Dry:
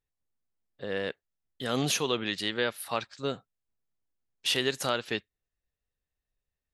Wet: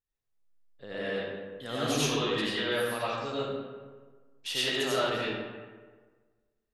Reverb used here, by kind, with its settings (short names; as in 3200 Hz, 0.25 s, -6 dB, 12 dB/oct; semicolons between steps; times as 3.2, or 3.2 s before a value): digital reverb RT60 1.5 s, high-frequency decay 0.55×, pre-delay 50 ms, DRR -9 dB; gain -8.5 dB